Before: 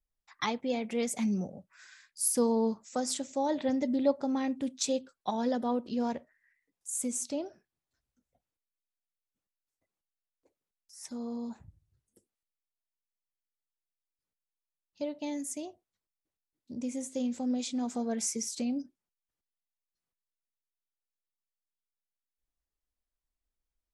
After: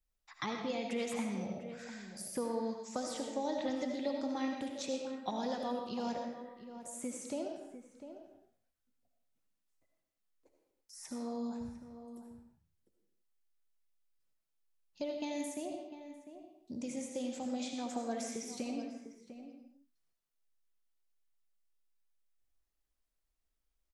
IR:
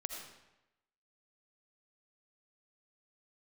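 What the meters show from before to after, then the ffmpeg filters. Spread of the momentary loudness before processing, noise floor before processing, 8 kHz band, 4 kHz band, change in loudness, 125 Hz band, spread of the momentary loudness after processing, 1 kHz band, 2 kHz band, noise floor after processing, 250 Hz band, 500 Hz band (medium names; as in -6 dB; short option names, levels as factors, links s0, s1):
13 LU, under -85 dBFS, -11.0 dB, -4.5 dB, -7.0 dB, -6.0 dB, 15 LU, -4.0 dB, -2.0 dB, -84 dBFS, -6.5 dB, -5.0 dB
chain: -filter_complex "[0:a]acrossover=split=580|2800[s0][s1][s2];[s0]acompressor=threshold=0.00891:ratio=4[s3];[s1]acompressor=threshold=0.00794:ratio=4[s4];[s2]acompressor=threshold=0.00316:ratio=4[s5];[s3][s4][s5]amix=inputs=3:normalize=0,asplit=2[s6][s7];[s7]adelay=699.7,volume=0.282,highshelf=f=4000:g=-15.7[s8];[s6][s8]amix=inputs=2:normalize=0[s9];[1:a]atrim=start_sample=2205,afade=t=out:st=0.4:d=0.01,atrim=end_sample=18081[s10];[s9][s10]afir=irnorm=-1:irlink=0,volume=1.41"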